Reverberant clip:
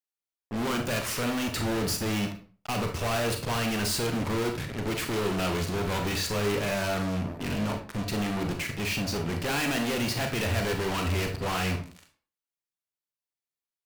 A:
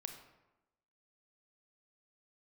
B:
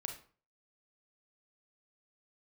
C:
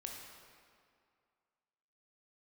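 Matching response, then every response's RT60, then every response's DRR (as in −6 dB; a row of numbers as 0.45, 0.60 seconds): B; 1.0, 0.45, 2.2 seconds; 5.0, 3.5, 0.0 decibels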